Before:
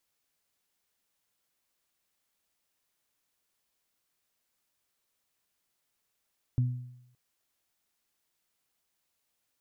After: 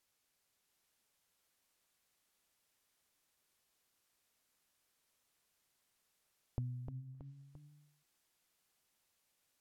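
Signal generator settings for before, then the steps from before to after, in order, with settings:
harmonic partials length 0.57 s, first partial 124 Hz, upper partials −13 dB, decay 0.79 s, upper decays 0.58 s, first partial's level −21 dB
treble cut that deepens with the level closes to 650 Hz, closed at −46 dBFS
downward compressor, threshold −38 dBFS
delay with pitch and tempo change per echo 673 ms, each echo +1 semitone, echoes 3, each echo −6 dB

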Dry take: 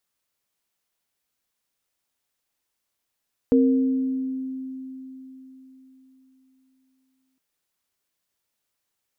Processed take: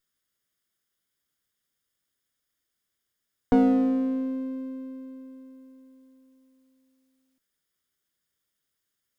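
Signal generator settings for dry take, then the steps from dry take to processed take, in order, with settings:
inharmonic partials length 3.86 s, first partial 262 Hz, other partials 467 Hz, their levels −3.5 dB, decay 4.06 s, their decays 1.22 s, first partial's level −14 dB
lower of the sound and its delayed copy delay 0.59 ms

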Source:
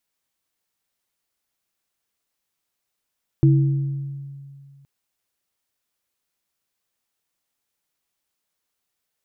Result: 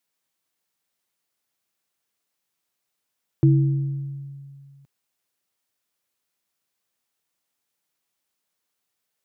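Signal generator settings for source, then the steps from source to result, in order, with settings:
inharmonic partials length 1.42 s, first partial 139 Hz, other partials 326 Hz, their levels −6 dB, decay 2.25 s, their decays 1.08 s, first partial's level −10.5 dB
high-pass filter 96 Hz

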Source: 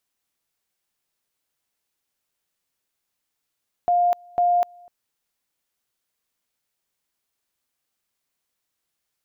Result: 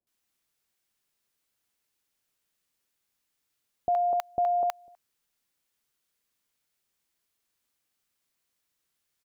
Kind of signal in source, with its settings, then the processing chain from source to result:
tone at two levels in turn 705 Hz −15.5 dBFS, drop 28.5 dB, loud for 0.25 s, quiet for 0.25 s, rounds 2
multiband delay without the direct sound lows, highs 70 ms, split 740 Hz

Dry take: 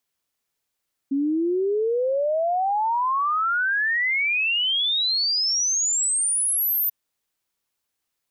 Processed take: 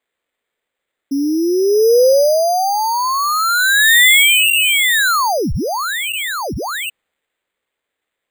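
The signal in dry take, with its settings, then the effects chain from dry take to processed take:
exponential sine sweep 270 Hz → 14,000 Hz 5.79 s −19.5 dBFS
low-pass that shuts in the quiet parts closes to 2,600 Hz, open at −26.5 dBFS
octave-band graphic EQ 125/250/500/2,000/4,000 Hz −4/+3/+12/+12/+6 dB
bad sample-rate conversion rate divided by 8×, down none, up hold

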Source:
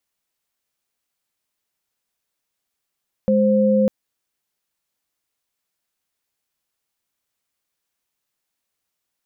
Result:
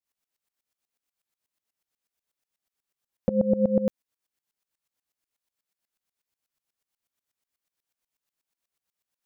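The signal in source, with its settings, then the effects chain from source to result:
held notes G#3/C5 sine, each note −16 dBFS 0.60 s
tremolo with a ramp in dB swelling 8.2 Hz, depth 19 dB

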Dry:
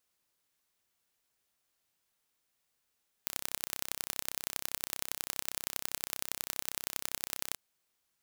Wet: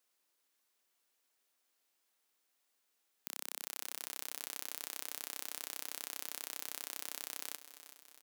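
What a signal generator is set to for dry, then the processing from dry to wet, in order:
impulse train 32.5 per second, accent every 3, −5 dBFS 4.30 s
high-pass filter 240 Hz 24 dB per octave
brickwall limiter −14 dBFS
repeating echo 376 ms, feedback 56%, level −13 dB

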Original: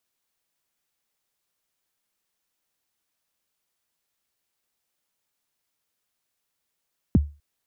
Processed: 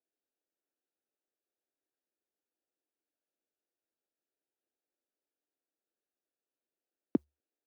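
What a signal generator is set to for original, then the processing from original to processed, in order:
synth kick length 0.25 s, from 310 Hz, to 73 Hz, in 25 ms, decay 0.30 s, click off, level −10 dB
adaptive Wiener filter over 41 samples
Chebyshev high-pass filter 300 Hz, order 3

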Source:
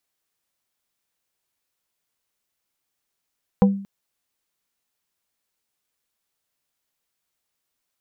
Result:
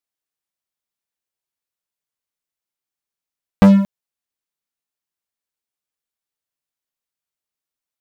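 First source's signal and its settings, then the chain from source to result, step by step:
struck wood plate, length 0.23 s, lowest mode 197 Hz, modes 4, decay 0.50 s, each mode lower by 5 dB, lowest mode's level −9 dB
leveller curve on the samples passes 5

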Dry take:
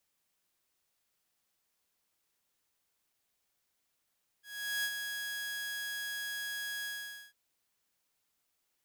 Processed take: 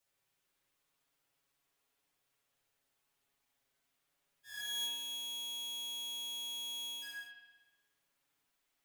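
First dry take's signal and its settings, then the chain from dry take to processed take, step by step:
note with an ADSR envelope saw 1,660 Hz, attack 409 ms, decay 59 ms, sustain −6 dB, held 2.42 s, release 478 ms −28 dBFS
flanger swept by the level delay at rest 7.5 ms, full sweep at −38.5 dBFS
spring reverb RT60 1.1 s, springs 57 ms, chirp 30 ms, DRR −3 dB

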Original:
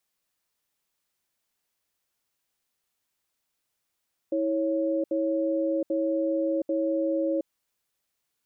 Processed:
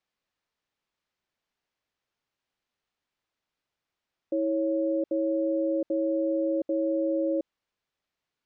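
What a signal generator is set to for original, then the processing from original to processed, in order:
tone pair in a cadence 324 Hz, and 551 Hz, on 0.72 s, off 0.07 s, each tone −26 dBFS 3.10 s
high-frequency loss of the air 150 metres

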